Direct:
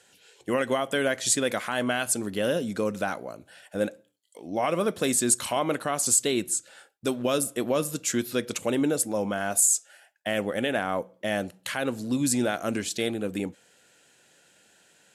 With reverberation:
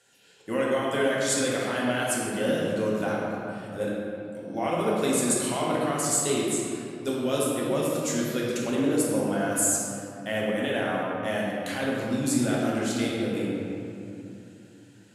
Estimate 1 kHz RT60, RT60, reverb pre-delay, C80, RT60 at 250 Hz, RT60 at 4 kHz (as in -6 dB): 2.6 s, 2.8 s, 5 ms, -0.5 dB, 3.8 s, 1.6 s